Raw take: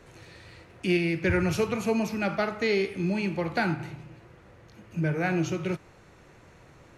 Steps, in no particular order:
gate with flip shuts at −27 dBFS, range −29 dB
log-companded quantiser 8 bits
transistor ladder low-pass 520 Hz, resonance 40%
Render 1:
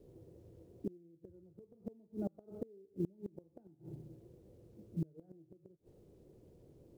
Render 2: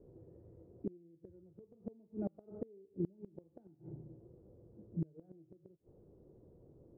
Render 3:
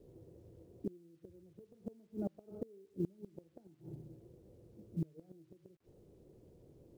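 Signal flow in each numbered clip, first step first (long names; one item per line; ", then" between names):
transistor ladder low-pass, then log-companded quantiser, then gate with flip
log-companded quantiser, then transistor ladder low-pass, then gate with flip
transistor ladder low-pass, then gate with flip, then log-companded quantiser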